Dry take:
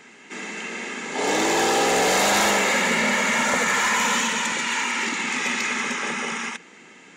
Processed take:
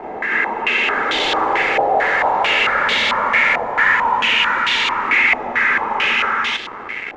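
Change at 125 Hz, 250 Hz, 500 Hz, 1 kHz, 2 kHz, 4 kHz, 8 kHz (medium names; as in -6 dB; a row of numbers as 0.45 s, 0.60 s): -2.5 dB, -3.5 dB, +2.0 dB, +7.0 dB, +7.5 dB, +6.0 dB, -14.5 dB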